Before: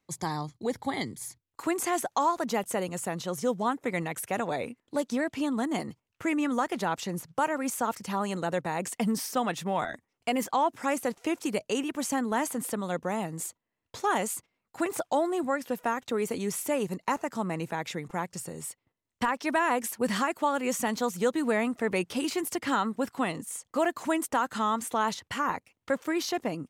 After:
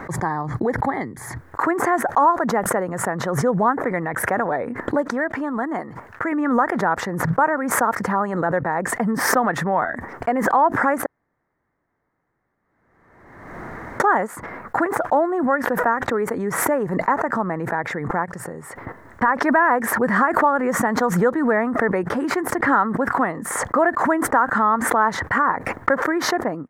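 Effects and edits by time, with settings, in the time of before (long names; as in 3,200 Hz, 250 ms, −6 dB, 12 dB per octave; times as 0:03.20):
0:05.05–0:06.32: low-shelf EQ 360 Hz −6.5 dB
0:11.06–0:14.00: fill with room tone
whole clip: de-essing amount 60%; drawn EQ curve 140 Hz 0 dB, 1,800 Hz +8 dB, 2,700 Hz −19 dB; background raised ahead of every attack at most 40 dB per second; level +3.5 dB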